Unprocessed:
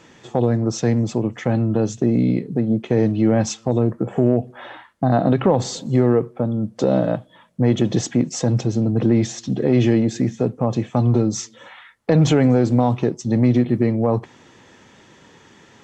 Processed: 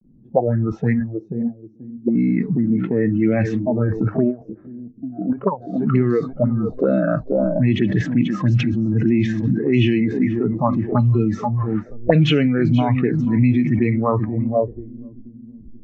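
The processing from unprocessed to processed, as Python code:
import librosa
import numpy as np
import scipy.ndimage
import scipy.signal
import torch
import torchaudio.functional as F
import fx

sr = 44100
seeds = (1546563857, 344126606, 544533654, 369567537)

p1 = fx.delta_hold(x, sr, step_db=-40.0)
p2 = fx.gate_flip(p1, sr, shuts_db=-24.0, range_db=-30, at=(0.99, 2.06), fade=0.02)
p3 = fx.peak_eq(p2, sr, hz=310.0, db=2.5, octaves=2.7)
p4 = fx.echo_feedback(p3, sr, ms=483, feedback_pct=49, wet_db=-11.0)
p5 = fx.over_compress(p4, sr, threshold_db=-25.0, ratio=-1.0)
p6 = p4 + F.gain(torch.from_numpy(p5), 1.0).numpy()
p7 = fx.low_shelf(p6, sr, hz=95.0, db=11.5)
p8 = fx.level_steps(p7, sr, step_db=9, at=(4.3, 5.73), fade=0.02)
p9 = fx.noise_reduce_blind(p8, sr, reduce_db=19)
p10 = fx.envelope_lowpass(p9, sr, base_hz=220.0, top_hz=2800.0, q=5.1, full_db=-7.5, direction='up')
y = F.gain(torch.from_numpy(p10), -5.0).numpy()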